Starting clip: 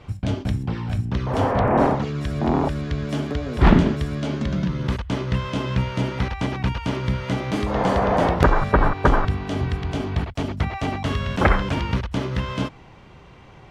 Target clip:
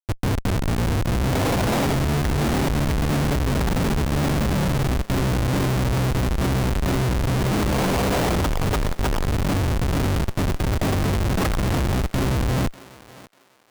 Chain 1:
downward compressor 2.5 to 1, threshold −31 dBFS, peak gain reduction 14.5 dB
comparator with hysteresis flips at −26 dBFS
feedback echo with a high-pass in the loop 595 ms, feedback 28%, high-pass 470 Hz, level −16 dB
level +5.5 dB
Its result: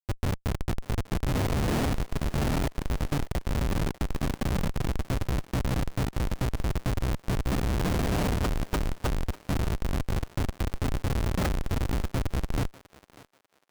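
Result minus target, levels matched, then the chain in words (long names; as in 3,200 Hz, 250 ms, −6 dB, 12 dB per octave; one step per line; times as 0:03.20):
downward compressor: peak gain reduction +5 dB
downward compressor 2.5 to 1, threshold −22.5 dBFS, peak gain reduction 9.5 dB
comparator with hysteresis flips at −26 dBFS
feedback echo with a high-pass in the loop 595 ms, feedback 28%, high-pass 470 Hz, level −16 dB
level +5.5 dB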